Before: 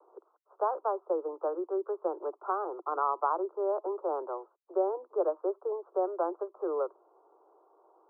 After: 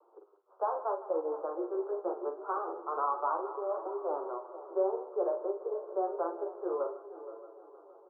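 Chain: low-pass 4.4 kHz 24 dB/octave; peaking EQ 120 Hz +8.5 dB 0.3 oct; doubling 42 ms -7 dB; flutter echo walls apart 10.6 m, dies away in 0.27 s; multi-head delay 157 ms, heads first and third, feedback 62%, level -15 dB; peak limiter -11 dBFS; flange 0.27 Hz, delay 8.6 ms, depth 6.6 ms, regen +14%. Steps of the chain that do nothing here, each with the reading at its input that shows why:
low-pass 4.4 kHz: input has nothing above 1.5 kHz; peaking EQ 120 Hz: input has nothing below 290 Hz; peak limiter -11 dBFS: peak at its input -14.0 dBFS

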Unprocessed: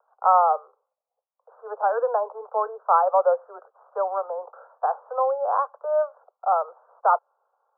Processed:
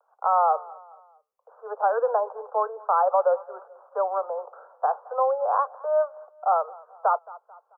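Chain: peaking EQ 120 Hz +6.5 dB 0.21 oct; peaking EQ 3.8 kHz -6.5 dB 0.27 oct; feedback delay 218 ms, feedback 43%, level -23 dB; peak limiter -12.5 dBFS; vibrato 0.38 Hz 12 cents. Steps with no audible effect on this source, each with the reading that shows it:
peaking EQ 120 Hz: input has nothing below 360 Hz; peaking EQ 3.8 kHz: input has nothing above 1.6 kHz

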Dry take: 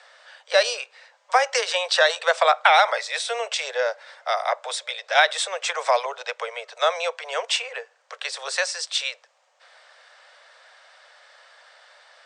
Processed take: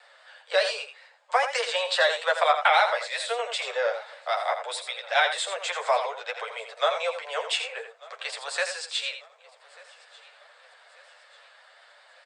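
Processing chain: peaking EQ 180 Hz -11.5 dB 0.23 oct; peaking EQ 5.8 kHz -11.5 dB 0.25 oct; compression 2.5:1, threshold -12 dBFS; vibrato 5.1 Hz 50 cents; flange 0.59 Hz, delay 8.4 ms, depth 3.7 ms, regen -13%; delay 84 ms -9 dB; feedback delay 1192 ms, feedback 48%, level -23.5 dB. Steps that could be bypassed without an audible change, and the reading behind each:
peaking EQ 180 Hz: input has nothing below 380 Hz

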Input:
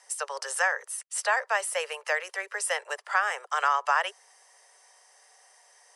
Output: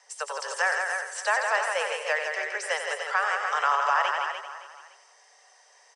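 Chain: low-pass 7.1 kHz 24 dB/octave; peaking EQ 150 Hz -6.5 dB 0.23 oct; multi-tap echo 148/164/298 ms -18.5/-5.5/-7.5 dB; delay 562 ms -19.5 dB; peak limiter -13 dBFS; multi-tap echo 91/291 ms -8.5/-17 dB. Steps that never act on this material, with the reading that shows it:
peaking EQ 150 Hz: input has nothing below 360 Hz

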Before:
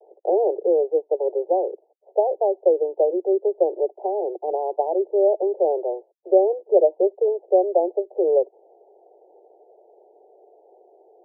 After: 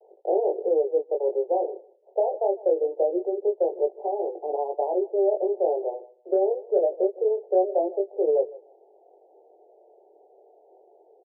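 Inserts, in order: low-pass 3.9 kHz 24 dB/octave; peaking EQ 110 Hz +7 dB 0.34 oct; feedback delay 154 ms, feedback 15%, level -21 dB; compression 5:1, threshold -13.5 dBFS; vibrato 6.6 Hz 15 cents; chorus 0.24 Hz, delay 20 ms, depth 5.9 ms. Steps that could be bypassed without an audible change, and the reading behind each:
low-pass 3.9 kHz: input has nothing above 910 Hz; peaking EQ 110 Hz: input has nothing below 300 Hz

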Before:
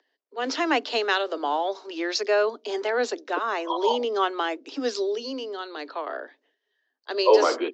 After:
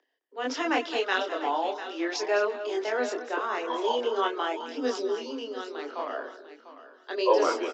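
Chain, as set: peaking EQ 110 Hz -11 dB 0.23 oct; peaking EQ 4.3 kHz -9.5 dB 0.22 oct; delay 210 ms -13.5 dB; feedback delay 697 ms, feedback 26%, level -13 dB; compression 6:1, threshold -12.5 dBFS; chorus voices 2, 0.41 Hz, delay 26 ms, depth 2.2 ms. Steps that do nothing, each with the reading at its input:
peaking EQ 110 Hz: input has nothing below 210 Hz

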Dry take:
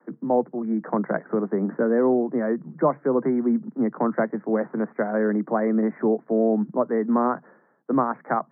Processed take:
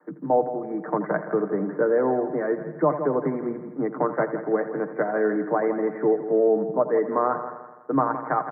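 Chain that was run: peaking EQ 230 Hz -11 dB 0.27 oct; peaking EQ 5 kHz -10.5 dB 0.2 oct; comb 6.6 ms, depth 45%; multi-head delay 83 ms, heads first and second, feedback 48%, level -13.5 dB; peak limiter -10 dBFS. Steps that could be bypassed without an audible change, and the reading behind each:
peaking EQ 5 kHz: input has nothing above 1.9 kHz

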